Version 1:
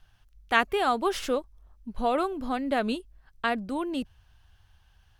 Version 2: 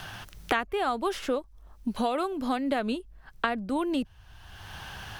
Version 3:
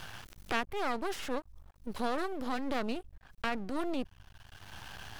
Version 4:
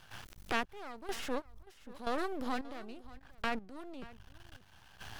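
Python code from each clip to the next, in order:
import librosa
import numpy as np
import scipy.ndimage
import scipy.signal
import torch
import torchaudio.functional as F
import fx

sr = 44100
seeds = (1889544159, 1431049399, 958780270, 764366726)

y1 = fx.band_squash(x, sr, depth_pct=100)
y1 = y1 * librosa.db_to_amplitude(-2.0)
y2 = fx.transient(y1, sr, attack_db=-5, sustain_db=3)
y2 = np.maximum(y2, 0.0)
y2 = y2 * librosa.db_to_amplitude(-1.5)
y3 = fx.step_gate(y2, sr, bpm=138, pattern='.xxxxx...', floor_db=-12.0, edge_ms=4.5)
y3 = y3 + 10.0 ** (-19.0 / 20.0) * np.pad(y3, (int(581 * sr / 1000.0), 0))[:len(y3)]
y3 = y3 * librosa.db_to_amplitude(-1.0)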